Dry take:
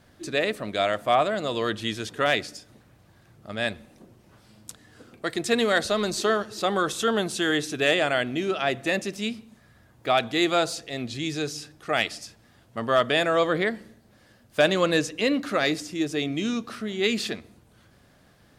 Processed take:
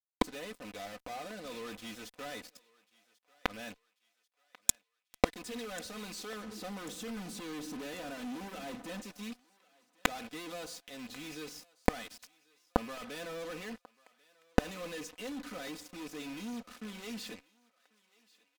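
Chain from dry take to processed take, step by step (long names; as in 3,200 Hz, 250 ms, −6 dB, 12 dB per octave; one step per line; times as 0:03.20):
loose part that buzzes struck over −33 dBFS, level −25 dBFS
0:06.43–0:09.02: parametric band 220 Hz +12 dB 2.4 octaves
fuzz pedal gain 38 dB, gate −36 dBFS
gate with flip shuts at −19 dBFS, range −36 dB
comb filter 4 ms, depth 74%
feedback echo with a high-pass in the loop 1,091 ms, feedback 49%, high-pass 720 Hz, level −22.5 dB
level +7 dB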